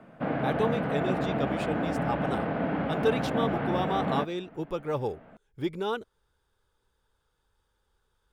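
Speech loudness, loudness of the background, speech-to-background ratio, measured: -33.0 LUFS, -30.0 LUFS, -3.0 dB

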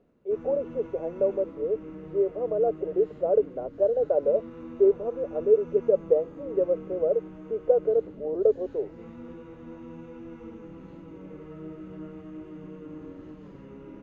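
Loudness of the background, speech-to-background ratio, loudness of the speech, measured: -43.0 LUFS, 16.5 dB, -26.5 LUFS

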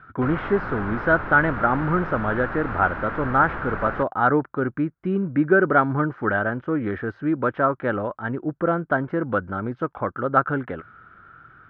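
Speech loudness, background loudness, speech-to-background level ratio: -23.0 LUFS, -31.0 LUFS, 8.0 dB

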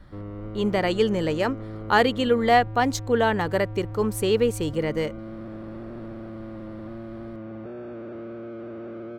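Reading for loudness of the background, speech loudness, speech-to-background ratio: -37.0 LUFS, -23.5 LUFS, 13.5 dB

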